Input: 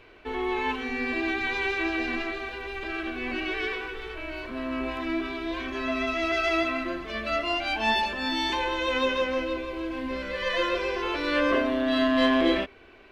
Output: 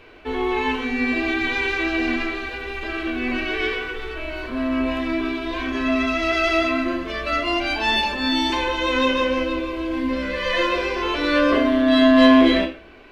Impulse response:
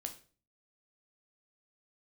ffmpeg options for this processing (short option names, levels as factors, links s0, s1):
-filter_complex "[1:a]atrim=start_sample=2205[s0];[0:a][s0]afir=irnorm=-1:irlink=0,volume=2.51"